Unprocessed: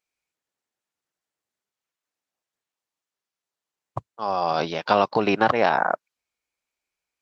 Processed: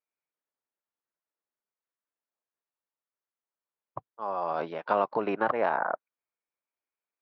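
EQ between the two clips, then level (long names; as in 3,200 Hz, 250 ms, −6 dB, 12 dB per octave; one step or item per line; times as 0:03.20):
high-pass filter 400 Hz 6 dB per octave
low-pass filter 1,500 Hz 12 dB per octave
notch filter 760 Hz, Q 12
−4.0 dB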